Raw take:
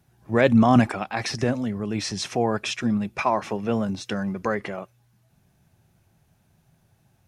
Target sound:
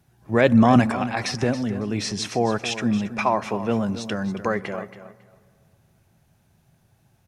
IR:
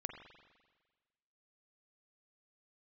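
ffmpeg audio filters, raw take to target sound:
-filter_complex "[0:a]aecho=1:1:276|552:0.224|0.0403,asplit=2[s0][s1];[1:a]atrim=start_sample=2205,asetrate=26460,aresample=44100[s2];[s1][s2]afir=irnorm=-1:irlink=0,volume=0.158[s3];[s0][s3]amix=inputs=2:normalize=0"

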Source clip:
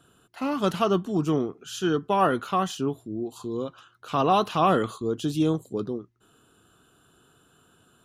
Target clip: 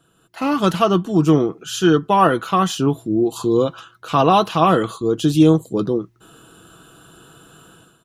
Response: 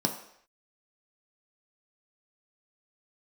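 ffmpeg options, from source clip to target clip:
-af "aecho=1:1:6.1:0.37,dynaudnorm=f=130:g=5:m=5.31,volume=0.891"

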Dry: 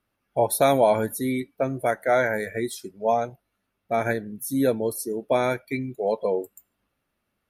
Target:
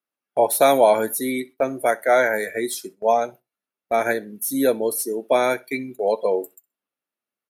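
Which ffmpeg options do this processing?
-filter_complex "[0:a]highpass=280,agate=range=0.141:threshold=0.00708:ratio=16:detection=peak,highshelf=f=5900:g=6.5,acrossover=split=840|2200[s0][s1][s2];[s2]asoftclip=type=tanh:threshold=0.075[s3];[s0][s1][s3]amix=inputs=3:normalize=0,aecho=1:1:63|126:0.0668|0.0114,volume=1.58"

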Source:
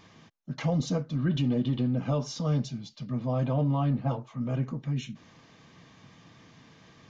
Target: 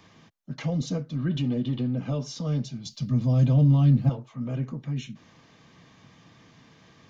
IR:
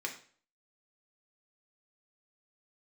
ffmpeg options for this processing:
-filter_complex "[0:a]asettb=1/sr,asplit=3[s0][s1][s2];[s0]atrim=end=2.854[s3];[s1]atrim=start=2.85:end=4.09,asetpts=PTS-STARTPTS,afade=t=in:d=0.004:c=qsin,afade=t=out:st=1.236:d=0.004:c=qsin,bass=f=250:g=10,treble=f=4000:g=14[s4];[s2]atrim=start=4.086[s5];[s3][s4]acrossfade=d=0.004:c1=hsin:c2=qsin[s6];[s6][s5]acrossfade=d=0.004:c1=qsin:c2=hsin,acrossover=split=130|640|1400[s7][s8][s9][s10];[s9]acompressor=threshold=0.00251:ratio=6[s11];[s7][s8][s11][s10]amix=inputs=4:normalize=0"

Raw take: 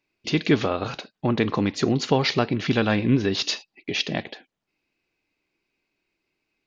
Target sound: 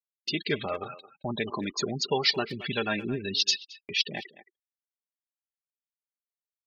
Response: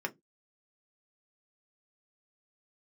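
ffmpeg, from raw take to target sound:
-filter_complex "[0:a]afftfilt=real='re*gte(hypot(re,im),0.0562)':imag='im*gte(hypot(re,im),0.0562)':win_size=1024:overlap=0.75,agate=range=0.00891:threshold=0.0178:ratio=16:detection=peak,aecho=1:1:5:0.37,flanger=delay=1.1:depth=2.4:regen=34:speed=1.5:shape=triangular,crystalizer=i=5.5:c=0,asplit=2[s0][s1];[s1]adelay=220,highpass=300,lowpass=3400,asoftclip=type=hard:threshold=0.251,volume=0.158[s2];[s0][s2]amix=inputs=2:normalize=0,volume=0.501"

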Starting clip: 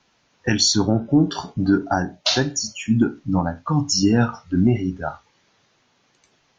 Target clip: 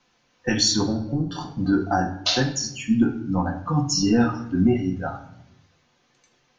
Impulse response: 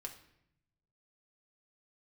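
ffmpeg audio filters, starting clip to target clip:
-filter_complex "[0:a]asettb=1/sr,asplit=3[s0][s1][s2];[s0]atrim=end=0.844[s3];[s1]atrim=start=0.84:end=1.41,asetpts=PTS-STARTPTS,afade=t=in:d=0.004:c=qsin,afade=t=out:st=0.566:d=0.004:c=qsin,acrossover=split=160[s4][s5];[s5]acompressor=threshold=0.0562:ratio=5[s6];[s4][s6]amix=inputs=2:normalize=0[s7];[s2]atrim=start=1.406[s8];[s3][s7]acrossfade=d=0.004:c1=hsin:c2=qsin[s9];[s9][s8]acrossfade=d=0.004:c1=qsin:c2=hsin[s10];[1:a]atrim=start_sample=2205[s11];[s10][s11]afir=irnorm=-1:irlink=0,volume=1.19"

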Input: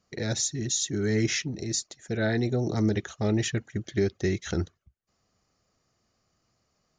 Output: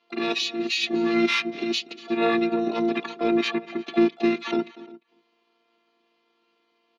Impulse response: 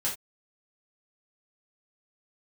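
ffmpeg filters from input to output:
-filter_complex "[0:a]afftfilt=real='hypot(re,im)*cos(PI*b)':imag='0':win_size=512:overlap=0.75,asplit=2[s0][s1];[s1]aecho=0:1:241:0.106[s2];[s0][s2]amix=inputs=2:normalize=0,asplit=4[s3][s4][s5][s6];[s4]asetrate=22050,aresample=44100,atempo=2,volume=0.178[s7];[s5]asetrate=29433,aresample=44100,atempo=1.49831,volume=0.708[s8];[s6]asetrate=88200,aresample=44100,atempo=0.5,volume=0.2[s9];[s3][s7][s8][s9]amix=inputs=4:normalize=0,highpass=f=210:w=0.5412,highpass=f=210:w=1.3066,equalizer=f=210:t=q:w=4:g=-8,equalizer=f=650:t=q:w=4:g=-5,equalizer=f=1600:t=q:w=4:g=-7,equalizer=f=2500:t=q:w=4:g=4,lowpass=f=3800:w=0.5412,lowpass=f=3800:w=1.3066,asplit=2[s10][s11];[s11]adelay=349.9,volume=0.0794,highshelf=f=4000:g=-7.87[s12];[s10][s12]amix=inputs=2:normalize=0,adynamicequalizer=threshold=0.01:dfrequency=340:dqfactor=2.4:tfrequency=340:tqfactor=2.4:attack=5:release=100:ratio=0.375:range=3:mode=cutabove:tftype=bell,asplit=2[s13][s14];[s14]asoftclip=type=tanh:threshold=0.0376,volume=0.299[s15];[s13][s15]amix=inputs=2:normalize=0,volume=2.51"

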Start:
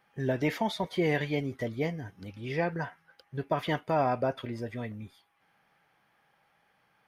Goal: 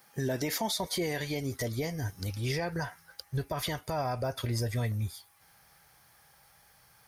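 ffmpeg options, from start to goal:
-af "highpass=43,aexciter=amount=4.8:drive=6.8:freq=4200,alimiter=level_in=1.33:limit=0.0631:level=0:latency=1:release=169,volume=0.75,asubboost=boost=10:cutoff=76,volume=1.78"

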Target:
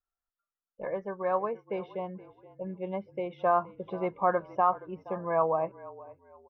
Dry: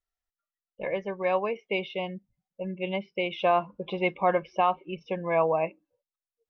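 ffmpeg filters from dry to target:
-filter_complex "[0:a]highshelf=f=1900:t=q:w=3:g=-10.5,asplit=4[s0][s1][s2][s3];[s1]adelay=472,afreqshift=-41,volume=0.112[s4];[s2]adelay=944,afreqshift=-82,volume=0.0359[s5];[s3]adelay=1416,afreqshift=-123,volume=0.0115[s6];[s0][s4][s5][s6]amix=inputs=4:normalize=0,volume=0.631"

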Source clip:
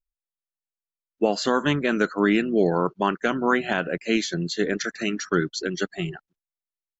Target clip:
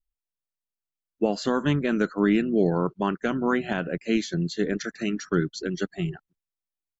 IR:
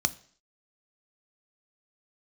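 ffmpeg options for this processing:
-af "lowshelf=f=300:g=10.5,volume=0.501"

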